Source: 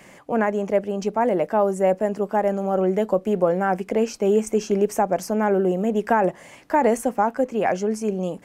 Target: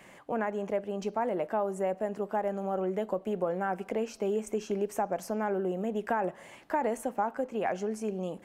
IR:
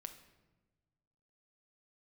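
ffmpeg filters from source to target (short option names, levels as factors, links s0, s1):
-filter_complex "[0:a]acompressor=threshold=0.0631:ratio=2,asplit=2[s0][s1];[s1]highpass=400,equalizer=f=480:t=q:w=4:g=-7,equalizer=f=2200:t=q:w=4:g=-7,equalizer=f=4200:t=q:w=4:g=5,lowpass=f=5900:w=0.5412,lowpass=f=5900:w=1.3066[s2];[1:a]atrim=start_sample=2205[s3];[s2][s3]afir=irnorm=-1:irlink=0,volume=0.708[s4];[s0][s4]amix=inputs=2:normalize=0,volume=0.447"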